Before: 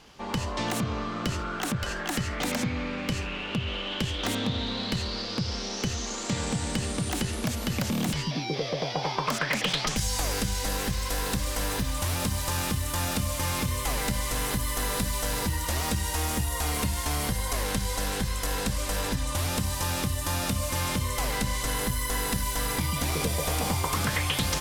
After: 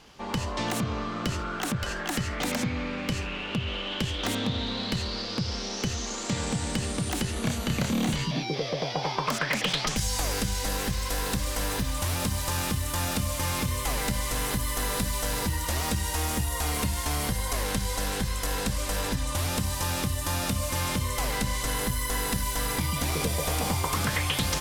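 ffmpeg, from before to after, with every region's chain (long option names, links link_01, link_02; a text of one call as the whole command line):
ffmpeg -i in.wav -filter_complex "[0:a]asettb=1/sr,asplit=3[link_01][link_02][link_03];[link_01]atrim=end=7.334[link_04];[link_02]atrim=start=7.33:end=8.43,asetpts=PTS-STARTPTS,afade=type=in:duration=0.004:curve=qsin,afade=type=out:start_time=1.096:duration=0.004:curve=qsin,bandreject=frequency=5200:width=7.4,acrossover=split=9000[link_05][link_06];[link_06]acompressor=threshold=-47dB:ratio=4:attack=1:release=60[link_07];[link_05][link_07]amix=inputs=2:normalize=0,asplit=2[link_08][link_09];[link_09]adelay=30,volume=-4dB[link_10];[link_08][link_10]amix=inputs=2:normalize=0,atrim=end_sample=48510[link_11];[link_03]atrim=start=8.426[link_12];[link_04][link_11]acrossfade=duration=0.004:curve1=hsin:curve2=qsin[link_13];[link_13][link_12]acrossfade=duration=0.004:curve1=qsin:curve2=hsin" out.wav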